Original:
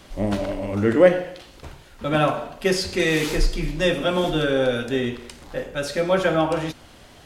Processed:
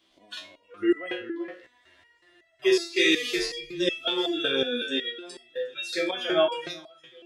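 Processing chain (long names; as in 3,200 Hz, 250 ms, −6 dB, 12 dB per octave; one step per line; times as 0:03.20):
meter weighting curve D
noise reduction from a noise print of the clip's start 24 dB
parametric band 3,400 Hz +5 dB 0.36 octaves
in parallel at +2.5 dB: downward compressor, threshold −29 dBFS, peak gain reduction 19.5 dB
on the sum: hollow resonant body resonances 340/670/1,000 Hz, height 12 dB, ringing for 35 ms
on a send: delay that swaps between a low-pass and a high-pass 386 ms, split 2,200 Hz, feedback 55%, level −14 dB
on the sum: frozen spectrum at 0:01.67, 0.96 s
step-sequenced resonator 5.4 Hz 65–660 Hz
level −2.5 dB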